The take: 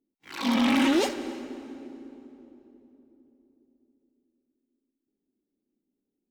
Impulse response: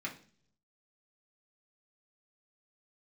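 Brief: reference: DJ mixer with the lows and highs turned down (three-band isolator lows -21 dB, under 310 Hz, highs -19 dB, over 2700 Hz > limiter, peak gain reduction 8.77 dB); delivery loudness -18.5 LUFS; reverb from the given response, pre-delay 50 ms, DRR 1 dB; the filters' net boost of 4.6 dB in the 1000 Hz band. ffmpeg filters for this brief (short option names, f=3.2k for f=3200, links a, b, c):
-filter_complex "[0:a]equalizer=f=1k:t=o:g=6,asplit=2[a][b];[1:a]atrim=start_sample=2205,adelay=50[c];[b][c]afir=irnorm=-1:irlink=0,volume=-3dB[d];[a][d]amix=inputs=2:normalize=0,acrossover=split=310 2700:gain=0.0891 1 0.112[e][f][g];[e][f][g]amix=inputs=3:normalize=0,volume=13.5dB,alimiter=limit=-7dB:level=0:latency=1"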